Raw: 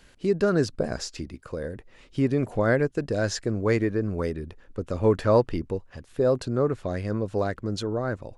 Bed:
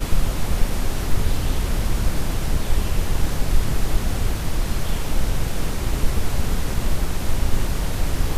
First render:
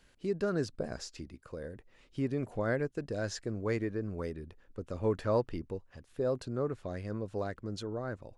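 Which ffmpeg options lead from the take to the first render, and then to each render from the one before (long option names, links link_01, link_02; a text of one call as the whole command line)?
ffmpeg -i in.wav -af "volume=-9.5dB" out.wav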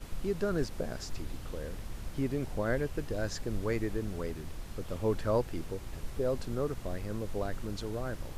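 ffmpeg -i in.wav -i bed.wav -filter_complex "[1:a]volume=-20dB[link_01];[0:a][link_01]amix=inputs=2:normalize=0" out.wav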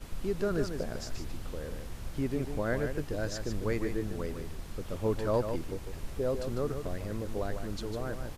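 ffmpeg -i in.wav -af "aecho=1:1:150:0.422" out.wav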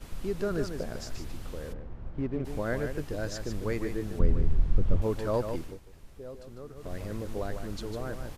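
ffmpeg -i in.wav -filter_complex "[0:a]asplit=3[link_01][link_02][link_03];[link_01]afade=type=out:start_time=1.72:duration=0.02[link_04];[link_02]adynamicsmooth=sensitivity=4:basefreq=1100,afade=type=in:start_time=1.72:duration=0.02,afade=type=out:start_time=2.44:duration=0.02[link_05];[link_03]afade=type=in:start_time=2.44:duration=0.02[link_06];[link_04][link_05][link_06]amix=inputs=3:normalize=0,asettb=1/sr,asplit=3[link_07][link_08][link_09];[link_07]atrim=end=4.194[link_10];[link_08]atrim=start=4.19:end=5.02,asetpts=PTS-STARTPTS,afade=type=in:duration=0.004:curve=qsin,afade=type=out:start_time=0.826:duration=0.004:curve=qsin,aemphasis=mode=reproduction:type=riaa[link_11];[link_09]atrim=start=5.016[link_12];[link_10][link_11]acrossfade=duration=0.004:curve1=hsin:curve2=qsin[link_13];[link_13][link_12]acrossfade=duration=0.004:curve1=qsin:curve2=hsin,asplit=3[link_14][link_15][link_16];[link_14]atrim=end=5.81,asetpts=PTS-STARTPTS,afade=type=out:start_time=5.59:duration=0.22:silence=0.251189[link_17];[link_15]atrim=start=5.81:end=6.75,asetpts=PTS-STARTPTS,volume=-12dB[link_18];[link_16]atrim=start=6.75,asetpts=PTS-STARTPTS,afade=type=in:duration=0.22:silence=0.251189[link_19];[link_17][link_18][link_19]concat=n=3:v=0:a=1" out.wav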